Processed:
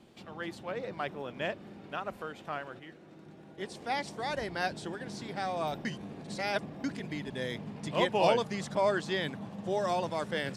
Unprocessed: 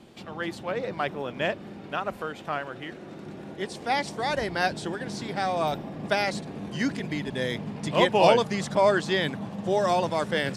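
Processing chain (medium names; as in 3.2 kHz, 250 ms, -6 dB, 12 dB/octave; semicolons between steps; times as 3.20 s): 2.79–3.58 s: feedback comb 160 Hz, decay 0.16 s, harmonics all, mix 60%; 5.85–6.84 s: reverse; trim -7 dB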